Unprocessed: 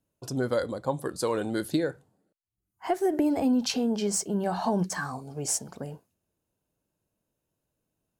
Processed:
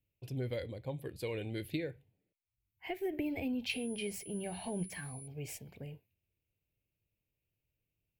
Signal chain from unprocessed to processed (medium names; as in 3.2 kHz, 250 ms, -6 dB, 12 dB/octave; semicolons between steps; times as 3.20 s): FFT filter 110 Hz 0 dB, 210 Hz -13 dB, 450 Hz -10 dB, 920 Hz -19 dB, 1.3 kHz -26 dB, 2.3 kHz +5 dB, 6.1 kHz -22 dB, 9.5 kHz -19 dB, 14 kHz -2 dB; 3.69–5.26 s: whistle 10 kHz -49 dBFS